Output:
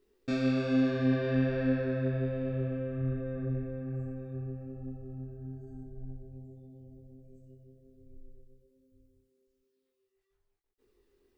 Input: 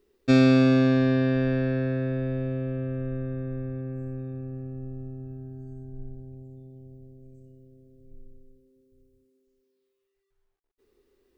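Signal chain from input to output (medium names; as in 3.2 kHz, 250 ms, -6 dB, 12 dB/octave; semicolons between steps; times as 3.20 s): peak limiter -16.5 dBFS, peak gain reduction 9.5 dB; chorus voices 4, 1.1 Hz, delay 22 ms, depth 3 ms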